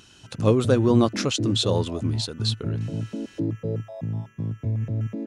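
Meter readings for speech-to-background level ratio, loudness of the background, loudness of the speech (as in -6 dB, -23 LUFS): 6.0 dB, -29.5 LUFS, -23.5 LUFS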